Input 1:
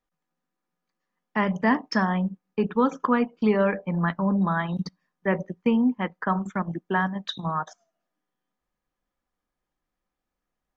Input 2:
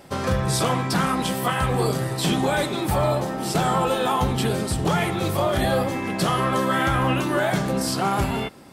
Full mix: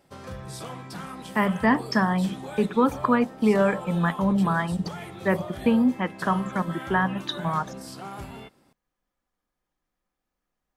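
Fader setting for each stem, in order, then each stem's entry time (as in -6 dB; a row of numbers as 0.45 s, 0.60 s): +1.0 dB, -15.5 dB; 0.00 s, 0.00 s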